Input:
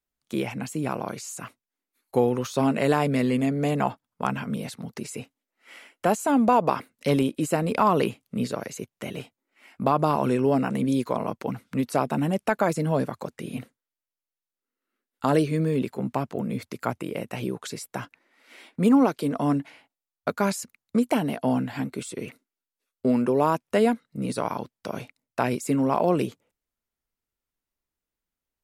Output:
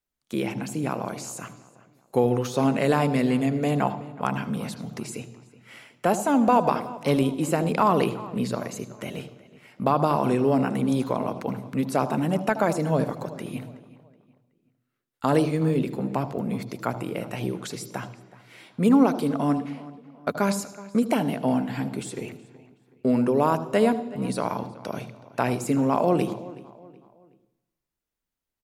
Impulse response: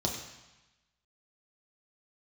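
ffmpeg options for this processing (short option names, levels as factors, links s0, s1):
-filter_complex "[0:a]asplit=2[s0][s1];[s1]adelay=373,lowpass=f=3400:p=1,volume=0.119,asplit=2[s2][s3];[s3]adelay=373,lowpass=f=3400:p=1,volume=0.39,asplit=2[s4][s5];[s5]adelay=373,lowpass=f=3400:p=1,volume=0.39[s6];[s0][s2][s4][s6]amix=inputs=4:normalize=0,asplit=2[s7][s8];[1:a]atrim=start_sample=2205,adelay=76[s9];[s8][s9]afir=irnorm=-1:irlink=0,volume=0.106[s10];[s7][s10]amix=inputs=2:normalize=0"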